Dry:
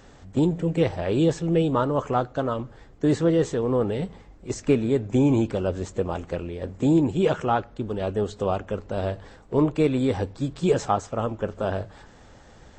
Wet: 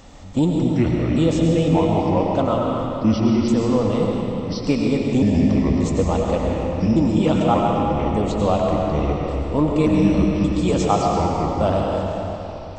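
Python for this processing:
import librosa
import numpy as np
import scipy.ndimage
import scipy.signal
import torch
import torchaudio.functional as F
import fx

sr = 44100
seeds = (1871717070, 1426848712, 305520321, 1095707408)

p1 = fx.pitch_trill(x, sr, semitones=-5.5, every_ms=580)
p2 = fx.rider(p1, sr, range_db=5, speed_s=0.5)
p3 = p1 + (p2 * librosa.db_to_amplitude(1.5))
p4 = fx.graphic_eq_31(p3, sr, hz=(125, 400, 1600), db=(-6, -11, -12))
p5 = fx.rev_freeverb(p4, sr, rt60_s=3.3, hf_ratio=0.8, predelay_ms=65, drr_db=-1.0)
p6 = 10.0 ** (-1.0 / 20.0) * np.tanh(p5 / 10.0 ** (-1.0 / 20.0))
p7 = fx.echo_warbled(p6, sr, ms=137, feedback_pct=66, rate_hz=2.8, cents=155, wet_db=-18.0)
y = p7 * librosa.db_to_amplitude(-1.5)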